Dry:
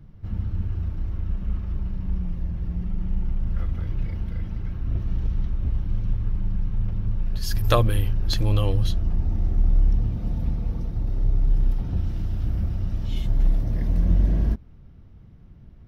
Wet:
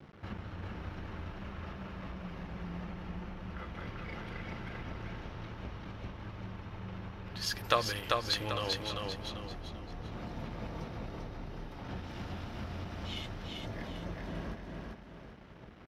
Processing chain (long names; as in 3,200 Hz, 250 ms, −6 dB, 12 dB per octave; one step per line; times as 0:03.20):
downward compressor, threshold −31 dBFS, peak gain reduction 16.5 dB
dead-zone distortion −51 dBFS
resonant band-pass 1,900 Hz, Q 0.51
on a send: repeating echo 393 ms, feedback 38%, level −3 dB
on the sum: level +13 dB